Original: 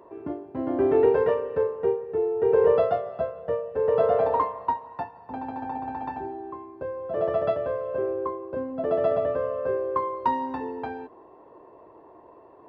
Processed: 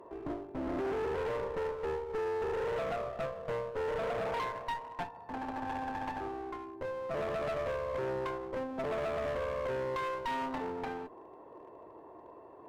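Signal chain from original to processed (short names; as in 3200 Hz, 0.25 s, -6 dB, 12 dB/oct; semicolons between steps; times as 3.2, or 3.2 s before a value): limiter -20 dBFS, peak gain reduction 10 dB; one-sided clip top -42 dBFS, bottom -25.5 dBFS; gain -1.5 dB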